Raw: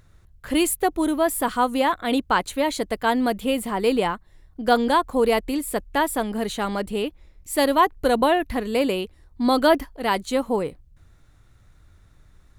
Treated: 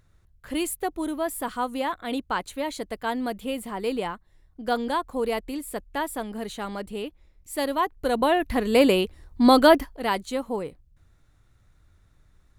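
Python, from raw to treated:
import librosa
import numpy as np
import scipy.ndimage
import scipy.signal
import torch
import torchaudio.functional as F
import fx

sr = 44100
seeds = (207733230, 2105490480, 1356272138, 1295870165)

y = fx.gain(x, sr, db=fx.line((7.92, -7.0), (8.8, 4.0), (9.48, 4.0), (10.39, -6.0)))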